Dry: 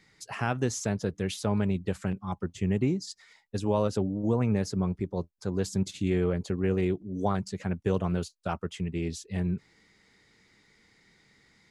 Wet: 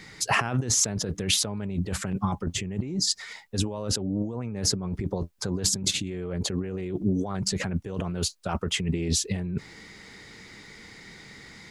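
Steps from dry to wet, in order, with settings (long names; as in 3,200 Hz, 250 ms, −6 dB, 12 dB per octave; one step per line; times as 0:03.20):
compressor whose output falls as the input rises −37 dBFS, ratio −1
level +8.5 dB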